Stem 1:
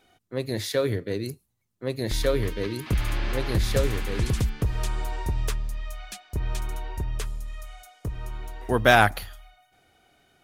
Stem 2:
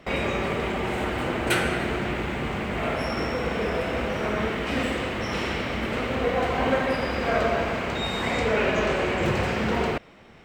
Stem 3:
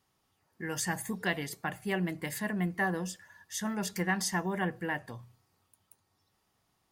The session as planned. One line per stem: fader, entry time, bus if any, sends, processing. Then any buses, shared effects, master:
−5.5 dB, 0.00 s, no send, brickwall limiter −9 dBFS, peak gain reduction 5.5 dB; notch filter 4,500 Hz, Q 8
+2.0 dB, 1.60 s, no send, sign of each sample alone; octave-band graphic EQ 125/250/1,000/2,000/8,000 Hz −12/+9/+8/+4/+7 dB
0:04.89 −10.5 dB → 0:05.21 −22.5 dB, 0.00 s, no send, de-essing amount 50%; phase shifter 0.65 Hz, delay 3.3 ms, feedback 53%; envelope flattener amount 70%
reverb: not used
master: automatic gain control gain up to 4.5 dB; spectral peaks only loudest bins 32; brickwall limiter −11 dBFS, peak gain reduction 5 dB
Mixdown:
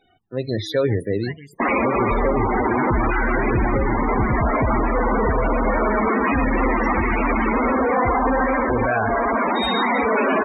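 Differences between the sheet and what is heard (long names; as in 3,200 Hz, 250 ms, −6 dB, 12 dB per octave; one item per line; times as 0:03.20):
stem 1 −5.5 dB → +2.5 dB
stem 3: missing envelope flattener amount 70%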